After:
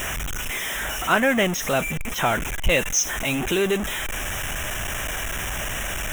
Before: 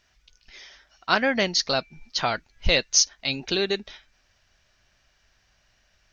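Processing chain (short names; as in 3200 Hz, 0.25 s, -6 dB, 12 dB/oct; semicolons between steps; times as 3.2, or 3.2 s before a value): zero-crossing step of -21 dBFS; Butterworth band-stop 4500 Hz, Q 1.6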